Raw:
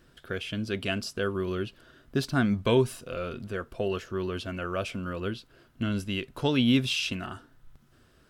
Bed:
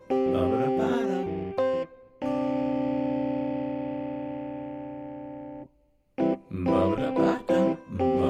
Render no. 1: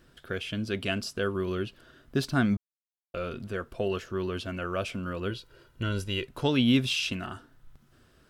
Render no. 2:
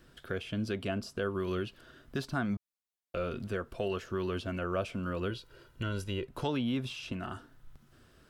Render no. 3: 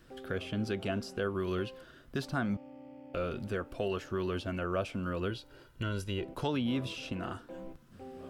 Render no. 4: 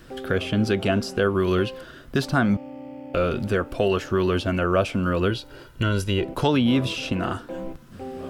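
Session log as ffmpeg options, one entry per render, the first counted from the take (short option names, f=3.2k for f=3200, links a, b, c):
-filter_complex "[0:a]asettb=1/sr,asplit=3[a][b][c];[a]atrim=end=5.304[d];[b]atrim=start=5.3:end=6.27,asetpts=PTS-STARTPTS,afade=t=in:d=0.004:c=qsin,afade=t=out:st=0.966:d=0.004:c=qsin,aecho=1:1:2.1:0.66,atrim=end_sample=42777[e];[c]atrim=start=6.266[f];[d][e]acrossfade=d=0.004:c1=hsin:c2=qsin[g];[g][f]acrossfade=d=0.004:c1=qsin:c2=hsin,asplit=3[h][i][j];[h]atrim=end=2.57,asetpts=PTS-STARTPTS,afade=t=out:st=2.566:d=0.004:c=hsin[k];[i]atrim=start=2.57:end=3.14,asetpts=PTS-STARTPTS,volume=0[l];[j]atrim=start=3.14,asetpts=PTS-STARTPTS,afade=t=in:d=0.004:c=hsin[m];[k][l][m]concat=n=3:v=0:a=1"
-filter_complex "[0:a]acrossover=split=700|1200[a][b][c];[a]alimiter=level_in=2.5dB:limit=-24dB:level=0:latency=1:release=281,volume=-2.5dB[d];[c]acompressor=threshold=-43dB:ratio=6[e];[d][b][e]amix=inputs=3:normalize=0"
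-filter_complex "[1:a]volume=-23dB[a];[0:a][a]amix=inputs=2:normalize=0"
-af "volume=12dB"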